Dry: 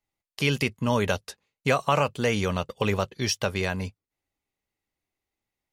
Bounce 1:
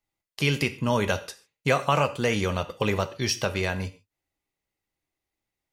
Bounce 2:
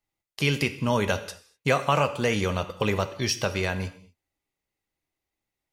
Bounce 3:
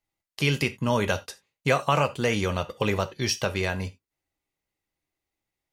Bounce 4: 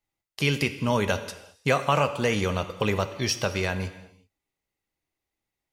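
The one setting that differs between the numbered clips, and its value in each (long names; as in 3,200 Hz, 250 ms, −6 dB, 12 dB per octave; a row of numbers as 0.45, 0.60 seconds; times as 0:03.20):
reverb whose tail is shaped and stops, gate: 170, 270, 110, 410 milliseconds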